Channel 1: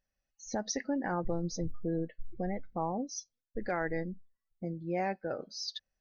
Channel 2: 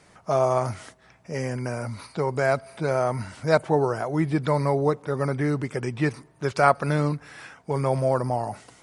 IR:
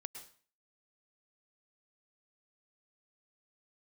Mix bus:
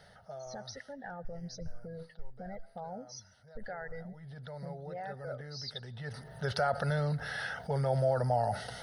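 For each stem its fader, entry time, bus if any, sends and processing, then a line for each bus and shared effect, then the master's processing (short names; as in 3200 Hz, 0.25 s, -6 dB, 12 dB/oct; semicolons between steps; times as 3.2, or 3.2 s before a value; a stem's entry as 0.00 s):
-1.0 dB, 0.00 s, send -10 dB, reverb removal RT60 1.5 s; limiter -31 dBFS, peak gain reduction 9 dB
4.03 s -16 dB -> 4.3 s -3.5 dB, 0.00 s, no send, limiter -15 dBFS, peak gain reduction 11 dB; fast leveller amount 50%; auto duck -14 dB, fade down 1.15 s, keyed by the first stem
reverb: on, RT60 0.45 s, pre-delay 98 ms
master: fixed phaser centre 1600 Hz, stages 8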